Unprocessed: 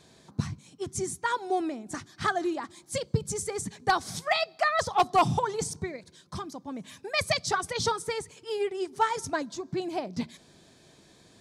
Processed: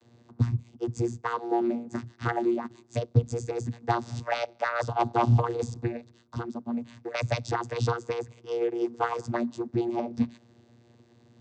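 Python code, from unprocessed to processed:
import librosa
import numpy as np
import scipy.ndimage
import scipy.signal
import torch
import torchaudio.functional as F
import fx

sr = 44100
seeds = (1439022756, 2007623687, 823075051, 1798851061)

y = fx.leveller(x, sr, passes=1)
y = fx.vocoder(y, sr, bands=16, carrier='saw', carrier_hz=118.0)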